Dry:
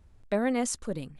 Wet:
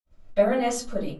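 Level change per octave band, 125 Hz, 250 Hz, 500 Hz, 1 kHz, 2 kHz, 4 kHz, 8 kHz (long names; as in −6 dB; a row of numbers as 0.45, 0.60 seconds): can't be measured, +0.5 dB, +8.0 dB, +6.5 dB, +2.5 dB, +4.0 dB, −0.5 dB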